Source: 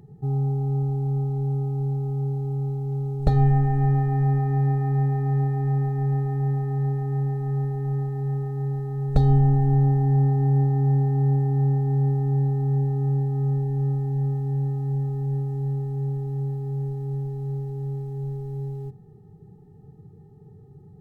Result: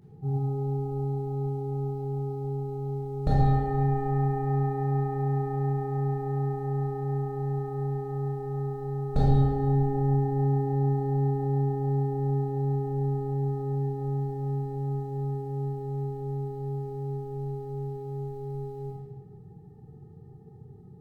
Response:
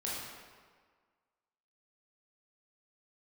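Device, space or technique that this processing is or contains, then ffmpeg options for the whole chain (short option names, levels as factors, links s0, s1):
stairwell: -filter_complex "[1:a]atrim=start_sample=2205[s0];[0:a][s0]afir=irnorm=-1:irlink=0,volume=0.668"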